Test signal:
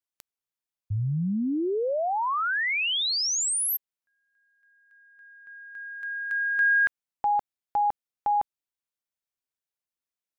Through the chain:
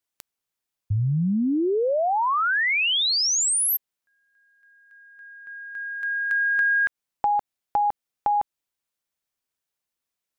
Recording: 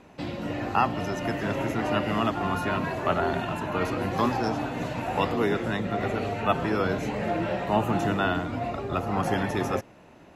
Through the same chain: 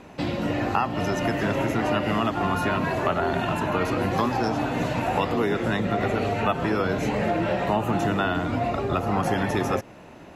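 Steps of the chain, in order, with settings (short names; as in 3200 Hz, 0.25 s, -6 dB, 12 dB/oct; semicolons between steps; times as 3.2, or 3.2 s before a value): compressor 4:1, threshold -27 dBFS; gain +6.5 dB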